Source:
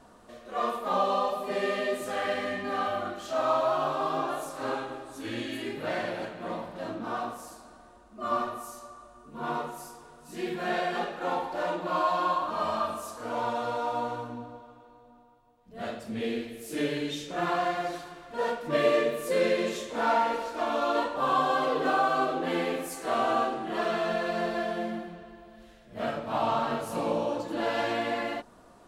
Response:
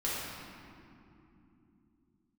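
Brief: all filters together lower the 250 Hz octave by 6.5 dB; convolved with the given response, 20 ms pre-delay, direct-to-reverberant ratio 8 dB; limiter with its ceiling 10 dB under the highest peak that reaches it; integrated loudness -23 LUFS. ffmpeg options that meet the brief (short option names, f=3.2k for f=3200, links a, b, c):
-filter_complex "[0:a]equalizer=f=250:t=o:g=-9,alimiter=limit=-24dB:level=0:latency=1,asplit=2[a][b];[1:a]atrim=start_sample=2205,adelay=20[c];[b][c]afir=irnorm=-1:irlink=0,volume=-15dB[d];[a][d]amix=inputs=2:normalize=0,volume=10.5dB"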